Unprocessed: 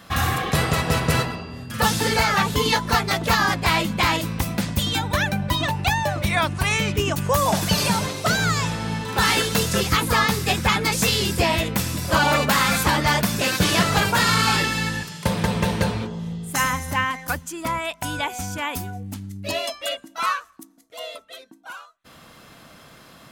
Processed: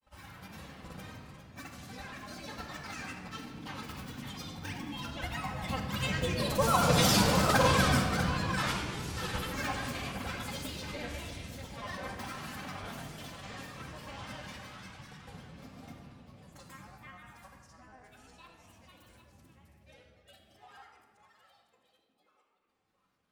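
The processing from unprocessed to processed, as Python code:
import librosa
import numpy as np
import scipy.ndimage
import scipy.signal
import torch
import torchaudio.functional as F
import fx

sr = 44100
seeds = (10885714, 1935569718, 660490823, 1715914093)

p1 = fx.doppler_pass(x, sr, speed_mps=33, closest_m=14.0, pass_at_s=7.15)
p2 = p1 + fx.echo_single(p1, sr, ms=650, db=-7.5, dry=0)
p3 = fx.granulator(p2, sr, seeds[0], grain_ms=100.0, per_s=20.0, spray_ms=100.0, spread_st=7)
p4 = fx.room_shoebox(p3, sr, seeds[1], volume_m3=3000.0, walls='mixed', distance_m=2.1)
y = p4 * 10.0 ** (-4.0 / 20.0)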